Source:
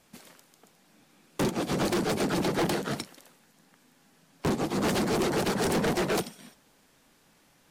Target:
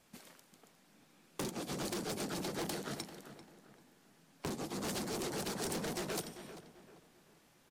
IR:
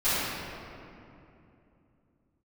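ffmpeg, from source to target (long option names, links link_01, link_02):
-filter_complex "[0:a]acrossover=split=4100[link_01][link_02];[link_01]acompressor=threshold=-34dB:ratio=6[link_03];[link_03][link_02]amix=inputs=2:normalize=0,asplit=2[link_04][link_05];[link_05]adelay=392,lowpass=frequency=2700:poles=1,volume=-11.5dB,asplit=2[link_06][link_07];[link_07]adelay=392,lowpass=frequency=2700:poles=1,volume=0.38,asplit=2[link_08][link_09];[link_09]adelay=392,lowpass=frequency=2700:poles=1,volume=0.38,asplit=2[link_10][link_11];[link_11]adelay=392,lowpass=frequency=2700:poles=1,volume=0.38[link_12];[link_04][link_06][link_08][link_10][link_12]amix=inputs=5:normalize=0,volume=-5dB"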